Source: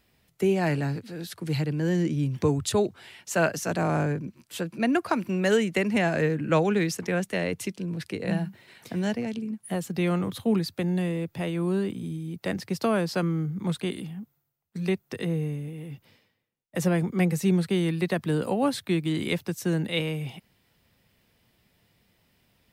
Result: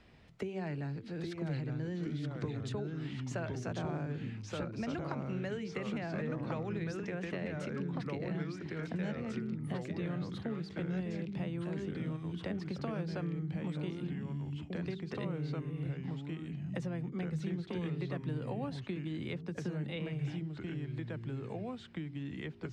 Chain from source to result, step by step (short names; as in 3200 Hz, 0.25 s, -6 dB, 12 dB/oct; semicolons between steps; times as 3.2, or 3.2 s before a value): low shelf 150 Hz +6 dB; de-hum 64.68 Hz, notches 7; compressor, threshold -31 dBFS, peak gain reduction 14 dB; air absorption 120 m; echoes that change speed 0.764 s, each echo -2 st, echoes 2; three-band squash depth 40%; gain -5.5 dB